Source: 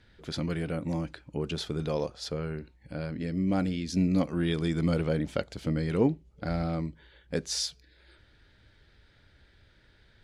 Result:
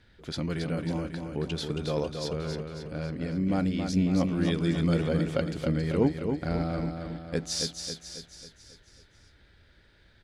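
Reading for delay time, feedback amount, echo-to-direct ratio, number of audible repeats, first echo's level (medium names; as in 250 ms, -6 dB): 273 ms, 52%, -4.5 dB, 6, -6.0 dB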